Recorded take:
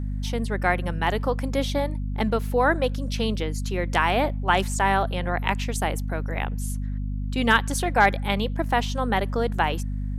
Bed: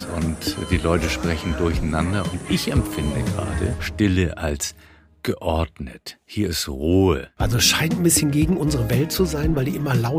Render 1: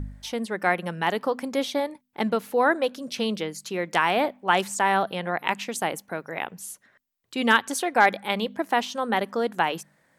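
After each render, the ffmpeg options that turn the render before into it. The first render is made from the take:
-af "bandreject=f=50:t=h:w=4,bandreject=f=100:t=h:w=4,bandreject=f=150:t=h:w=4,bandreject=f=200:t=h:w=4,bandreject=f=250:t=h:w=4"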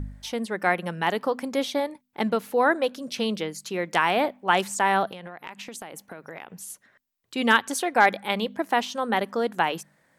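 -filter_complex "[0:a]asettb=1/sr,asplit=3[s0][s1][s2];[s0]atrim=end=5.114[s3];[s1]atrim=start=5.11:end=6.7,asetpts=PTS-STARTPTS,afade=t=in:d=0.004:c=qsin,afade=t=out:st=1.586:d=0.004:c=qsin,acompressor=threshold=0.02:ratio=12:attack=3.2:release=140:knee=1:detection=peak[s4];[s2]atrim=start=6.696[s5];[s3][s4]acrossfade=d=0.004:c1=hsin:c2=qsin[s6];[s6][s5]acrossfade=d=0.004:c1=qsin:c2=hsin"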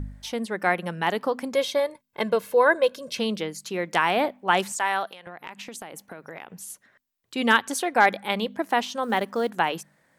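-filter_complex "[0:a]asettb=1/sr,asplit=3[s0][s1][s2];[s0]atrim=end=1.544[s3];[s1]atrim=start=1.54:end=3.19,asetpts=PTS-STARTPTS,afade=t=in:d=0.004:c=qsin,afade=t=out:st=1.646:d=0.004:c=qsin,aecho=1:1:1.9:0.65,atrim=end_sample=72765[s4];[s2]atrim=start=3.186[s5];[s3][s4]acrossfade=d=0.004:c1=hsin:c2=qsin[s6];[s6][s5]acrossfade=d=0.004:c1=qsin:c2=hsin,asettb=1/sr,asplit=3[s7][s8][s9];[s7]atrim=end=4.724[s10];[s8]atrim=start=4.72:end=5.27,asetpts=PTS-STARTPTS,afade=t=in:d=0.004:c=qsin,afade=t=out:st=0.546:d=0.004:c=qsin,highpass=f=1000:p=1[s11];[s9]atrim=start=5.266[s12];[s10][s11]acrossfade=d=0.004:c1=hsin:c2=qsin[s13];[s13][s12]acrossfade=d=0.004:c1=qsin:c2=hsin,asettb=1/sr,asplit=3[s14][s15][s16];[s14]atrim=end=9.034[s17];[s15]atrim=start=9.03:end=9.5,asetpts=PTS-STARTPTS,afade=t=in:d=0.004:c=qsin,afade=t=out:st=0.466:d=0.004:c=qsin,acrusher=bits=8:mode=log:mix=0:aa=0.000001[s18];[s16]atrim=start=9.496[s19];[s17][s18]acrossfade=d=0.004:c1=hsin:c2=qsin[s20];[s20][s19]acrossfade=d=0.004:c1=qsin:c2=hsin"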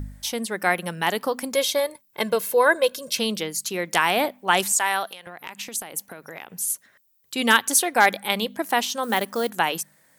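-af "aemphasis=mode=production:type=75kf"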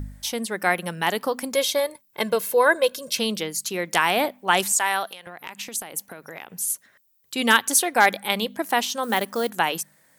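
-af anull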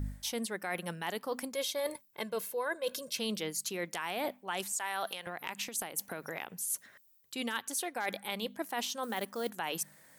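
-af "alimiter=limit=0.266:level=0:latency=1:release=265,areverse,acompressor=threshold=0.0224:ratio=6,areverse"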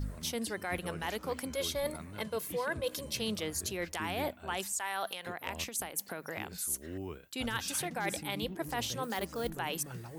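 -filter_complex "[1:a]volume=0.0596[s0];[0:a][s0]amix=inputs=2:normalize=0"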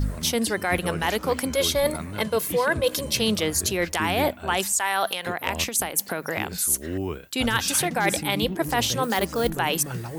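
-af "volume=3.98"

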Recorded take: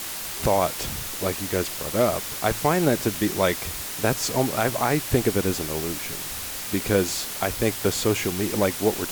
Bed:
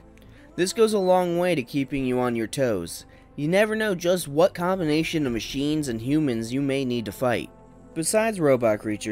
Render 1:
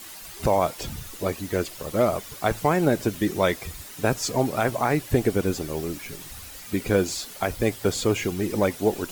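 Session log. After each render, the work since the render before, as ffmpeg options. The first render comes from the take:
-af "afftdn=nr=11:nf=-33"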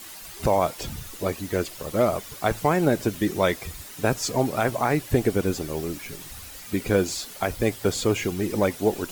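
-af anull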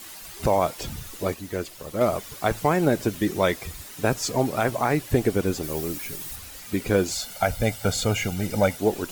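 -filter_complex "[0:a]asettb=1/sr,asplit=3[s0][s1][s2];[s0]atrim=end=5.634[s3];[s1]atrim=start=5.63:end=6.36,asetpts=PTS-STARTPTS,afade=t=in:d=0.004:c=qsin,afade=t=out:st=0.726:d=0.004:c=qsin,highshelf=f=9000:g=9[s4];[s2]atrim=start=6.356[s5];[s3][s4]acrossfade=d=0.004:c1=hsin:c2=qsin[s6];[s6][s5]acrossfade=d=0.004:c1=qsin:c2=hsin,asettb=1/sr,asplit=3[s7][s8][s9];[s7]atrim=end=7.114[s10];[s8]atrim=start=7.11:end=8.77,asetpts=PTS-STARTPTS,afade=t=in:d=0.004:c=qsin,afade=t=out:st=1.656:d=0.004:c=qsin,aecho=1:1:1.4:0.71,atrim=end_sample=73206[s11];[s9]atrim=start=8.766[s12];[s10][s11]acrossfade=d=0.004:c1=hsin:c2=qsin[s13];[s13][s12]acrossfade=d=0.004:c1=qsin:c2=hsin,asplit=3[s14][s15][s16];[s14]atrim=end=1.342[s17];[s15]atrim=start=1.338:end=2.012,asetpts=PTS-STARTPTS,volume=0.631[s18];[s16]atrim=start=2.008[s19];[s17][s18]acrossfade=d=0.004:c1=hsin:c2=hsin[s20];[s20][s19]acrossfade=d=0.004:c1=hsin:c2=hsin"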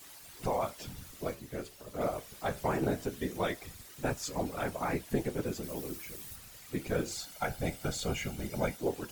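-af "afftfilt=real='hypot(re,im)*cos(2*PI*random(0))':imag='hypot(re,im)*sin(2*PI*random(1))':win_size=512:overlap=0.75,flanger=delay=7:depth=9.4:regen=-71:speed=0.22:shape=sinusoidal"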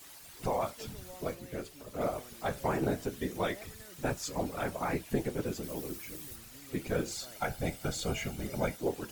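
-filter_complex "[1:a]volume=0.0266[s0];[0:a][s0]amix=inputs=2:normalize=0"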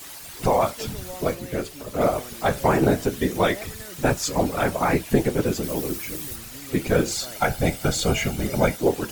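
-af "volume=3.98"

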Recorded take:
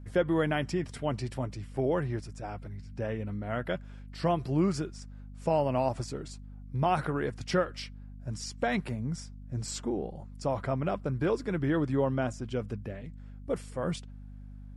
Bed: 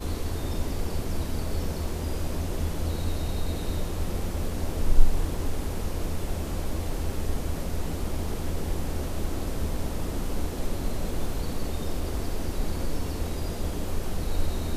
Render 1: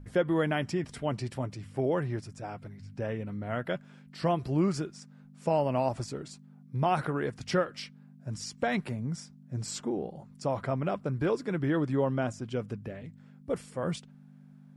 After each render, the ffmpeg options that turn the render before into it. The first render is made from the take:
-af "bandreject=f=50:t=h:w=4,bandreject=f=100:t=h:w=4"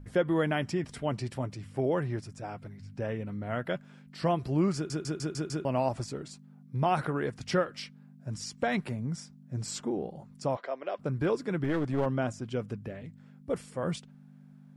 -filter_complex "[0:a]asplit=3[s0][s1][s2];[s0]afade=t=out:st=10.55:d=0.02[s3];[s1]highpass=f=400:w=0.5412,highpass=f=400:w=1.3066,equalizer=f=410:t=q:w=4:g=-3,equalizer=f=870:t=q:w=4:g=-6,equalizer=f=1300:t=q:w=4:g=-7,equalizer=f=2400:t=q:w=4:g=-3,lowpass=f=5500:w=0.5412,lowpass=f=5500:w=1.3066,afade=t=in:st=10.55:d=0.02,afade=t=out:st=10.98:d=0.02[s4];[s2]afade=t=in:st=10.98:d=0.02[s5];[s3][s4][s5]amix=inputs=3:normalize=0,asettb=1/sr,asplit=3[s6][s7][s8];[s6]atrim=end=11.644[s9];[s7]atrim=start=11.64:end=12.06,asetpts=PTS-STARTPTS,afade=t=in:d=0.004:c=qsin,afade=t=out:st=0.416:d=0.004:c=qsin,aeval=exprs='clip(val(0),-1,0.0237)':c=same[s10];[s8]atrim=start=12.056[s11];[s9][s10]acrossfade=d=0.004:c1=hsin:c2=qsin[s12];[s12][s11]acrossfade=d=0.004:c1=qsin:c2=hsin,asplit=7[s13][s14][s15][s16][s17][s18][s19];[s13]atrim=end=4.902[s20];[s14]atrim=start=4.748:end=4.902[s21];[s15]atrim=start=4.748:end=4.902[s22];[s16]atrim=start=4.748:end=4.902[s23];[s17]atrim=start=4.748:end=4.902[s24];[s18]atrim=start=4.748:end=4.902[s25];[s19]atrim=start=5.648[s26];[s20][s21]acrossfade=d=0.004:c1=hsin:c2=hsin[s27];[s27][s22]acrossfade=d=0.004:c1=hsin:c2=hsin[s28];[s28][s23]acrossfade=d=0.004:c1=hsin:c2=hsin[s29];[s29][s24]acrossfade=d=0.004:c1=hsin:c2=hsin[s30];[s30][s25]acrossfade=d=0.004:c1=hsin:c2=hsin[s31];[s31][s26]acrossfade=d=0.004:c1=hsin:c2=hsin"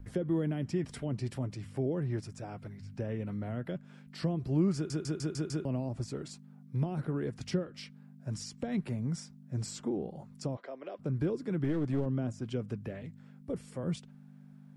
-filter_complex "[0:a]acrossover=split=410[s0][s1];[s1]acompressor=threshold=0.00891:ratio=6[s2];[s0][s2]amix=inputs=2:normalize=0,acrossover=split=540|3200[s3][s4][s5];[s4]alimiter=level_in=6.68:limit=0.0631:level=0:latency=1:release=21,volume=0.15[s6];[s3][s6][s5]amix=inputs=3:normalize=0"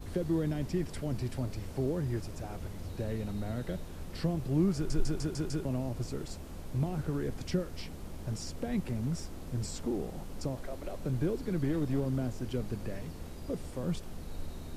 -filter_complex "[1:a]volume=0.2[s0];[0:a][s0]amix=inputs=2:normalize=0"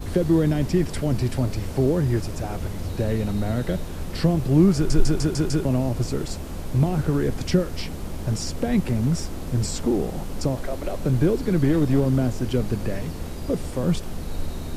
-af "volume=3.76"

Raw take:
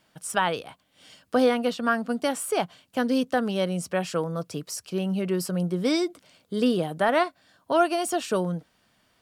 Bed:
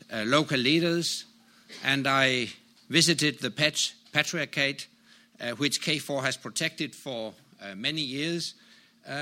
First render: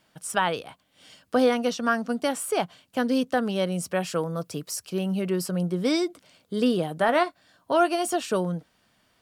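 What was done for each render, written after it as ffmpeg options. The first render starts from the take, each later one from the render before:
-filter_complex "[0:a]asettb=1/sr,asplit=3[s0][s1][s2];[s0]atrim=end=1.524[s3];[s1]atrim=start=1.52:end=2.11,asetpts=PTS-STARTPTS,afade=t=in:d=0.004:c=qsin,afade=t=out:st=0.586:d=0.004:c=qsin,equalizer=f=5900:t=o:w=0.27:g=12.5[s4];[s2]atrim=start=2.106[s5];[s3][s4]acrossfade=d=0.004:c1=hsin:c2=qsin[s6];[s6][s5]acrossfade=d=0.004:c1=qsin:c2=hsin,asettb=1/sr,asplit=3[s7][s8][s9];[s7]atrim=end=3.724[s10];[s8]atrim=start=3.72:end=5.3,asetpts=PTS-STARTPTS,afade=t=in:d=0.004:c=qsin,afade=t=out:st=1.576:d=0.004:c=qsin,highshelf=f=11000:g=7[s11];[s9]atrim=start=5.296[s12];[s10][s11]acrossfade=d=0.004:c1=hsin:c2=qsin[s13];[s13][s12]acrossfade=d=0.004:c1=qsin:c2=hsin,asettb=1/sr,asplit=3[s14][s15][s16];[s14]atrim=end=6.984[s17];[s15]atrim=start=6.98:end=8.16,asetpts=PTS-STARTPTS,afade=t=in:d=0.004:c=qsin,afade=t=out:st=1.176:d=0.004:c=qsin,asplit=2[s18][s19];[s19]adelay=17,volume=0.237[s20];[s18][s20]amix=inputs=2:normalize=0,atrim=end_sample=52038[s21];[s16]atrim=start=8.156[s22];[s17][s21]acrossfade=d=0.004:c1=hsin:c2=qsin[s23];[s23][s22]acrossfade=d=0.004:c1=qsin:c2=hsin"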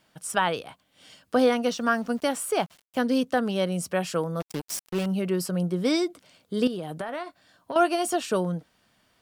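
-filter_complex "[0:a]asettb=1/sr,asplit=3[s0][s1][s2];[s0]atrim=end=1.654[s3];[s1]atrim=start=1.65:end=2.99,asetpts=PTS-STARTPTS,afade=t=in:d=0.004:c=qsin,afade=t=out:st=1.336:d=0.004:c=qsin,aeval=exprs='val(0)*gte(abs(val(0)),0.00422)':c=same[s4];[s2]atrim=start=2.986[s5];[s3][s4]acrossfade=d=0.004:c1=hsin:c2=qsin[s6];[s6][s5]acrossfade=d=0.004:c1=qsin:c2=hsin,asettb=1/sr,asplit=3[s7][s8][s9];[s7]atrim=end=4.404[s10];[s8]atrim=start=4.4:end=5.06,asetpts=PTS-STARTPTS,afade=t=in:d=0.004:c=qsin,afade=t=out:st=0.656:d=0.004:c=qsin,acrusher=bits=4:mix=0:aa=0.5[s11];[s9]atrim=start=5.056[s12];[s10][s11]acrossfade=d=0.004:c1=hsin:c2=qsin[s13];[s13][s12]acrossfade=d=0.004:c1=qsin:c2=hsin,asettb=1/sr,asplit=3[s14][s15][s16];[s14]atrim=end=6.674[s17];[s15]atrim=start=6.67:end=7.76,asetpts=PTS-STARTPTS,afade=t=in:d=0.004:c=qsin,afade=t=out:st=1.086:d=0.004:c=qsin,acompressor=threshold=0.0398:ratio=12:attack=3.2:release=140:knee=1:detection=peak[s18];[s16]atrim=start=7.756[s19];[s17][s18]acrossfade=d=0.004:c1=hsin:c2=qsin[s20];[s20][s19]acrossfade=d=0.004:c1=qsin:c2=hsin"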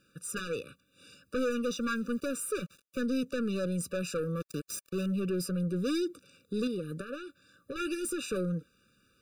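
-af "asoftclip=type=tanh:threshold=0.0447,afftfilt=real='re*eq(mod(floor(b*sr/1024/580),2),0)':imag='im*eq(mod(floor(b*sr/1024/580),2),0)':win_size=1024:overlap=0.75"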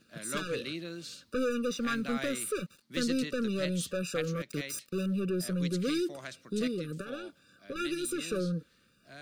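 -filter_complex "[1:a]volume=0.168[s0];[0:a][s0]amix=inputs=2:normalize=0"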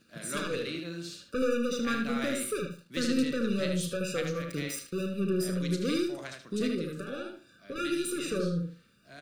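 -filter_complex "[0:a]asplit=2[s0][s1];[s1]adelay=35,volume=0.282[s2];[s0][s2]amix=inputs=2:normalize=0,asplit=2[s3][s4];[s4]adelay=76,lowpass=f=3300:p=1,volume=0.668,asplit=2[s5][s6];[s6]adelay=76,lowpass=f=3300:p=1,volume=0.23,asplit=2[s7][s8];[s8]adelay=76,lowpass=f=3300:p=1,volume=0.23[s9];[s5][s7][s9]amix=inputs=3:normalize=0[s10];[s3][s10]amix=inputs=2:normalize=0"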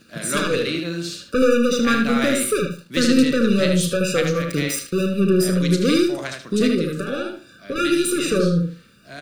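-af "volume=3.98"

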